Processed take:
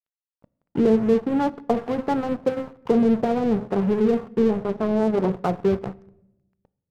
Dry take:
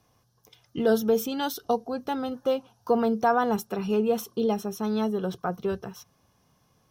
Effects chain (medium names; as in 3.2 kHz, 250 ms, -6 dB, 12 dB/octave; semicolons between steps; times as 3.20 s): low-pass that closes with the level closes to 390 Hz, closed at -21 dBFS; Bessel low-pass 830 Hz, order 2; de-hum 52.43 Hz, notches 14; in parallel at -0.5 dB: peak limiter -23 dBFS, peak gain reduction 8 dB; on the sum: band noise 96–230 Hz -45 dBFS; crossover distortion -36.5 dBFS; on a send at -19 dB: reverberation RT60 0.90 s, pre-delay 7 ms; 4.58–5.30 s: on the sum: loudspeaker Doppler distortion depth 0.52 ms; trim +5.5 dB